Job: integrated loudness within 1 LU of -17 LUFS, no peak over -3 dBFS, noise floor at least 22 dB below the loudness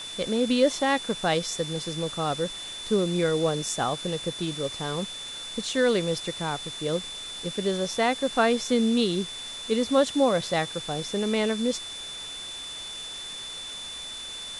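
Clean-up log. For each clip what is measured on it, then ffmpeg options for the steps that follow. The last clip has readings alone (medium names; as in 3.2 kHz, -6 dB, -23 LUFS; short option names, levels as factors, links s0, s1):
steady tone 3.5 kHz; tone level -36 dBFS; noise floor -38 dBFS; noise floor target -49 dBFS; loudness -27.0 LUFS; peak level -10.0 dBFS; loudness target -17.0 LUFS
-> -af "bandreject=f=3500:w=30"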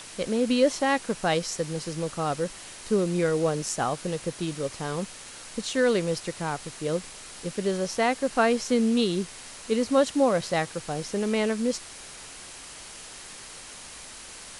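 steady tone not found; noise floor -44 dBFS; noise floor target -49 dBFS
-> -af "afftdn=nr=6:nf=-44"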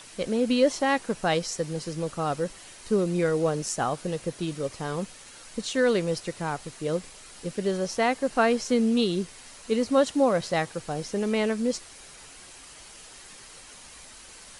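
noise floor -48 dBFS; noise floor target -49 dBFS
-> -af "afftdn=nr=6:nf=-48"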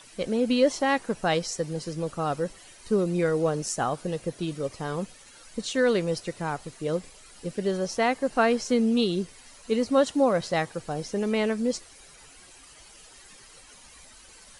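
noise floor -51 dBFS; loudness -27.0 LUFS; peak level -10.5 dBFS; loudness target -17.0 LUFS
-> -af "volume=3.16,alimiter=limit=0.708:level=0:latency=1"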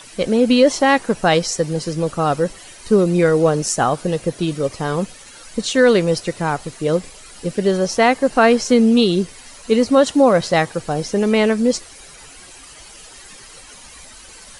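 loudness -17.0 LUFS; peak level -3.0 dBFS; noise floor -41 dBFS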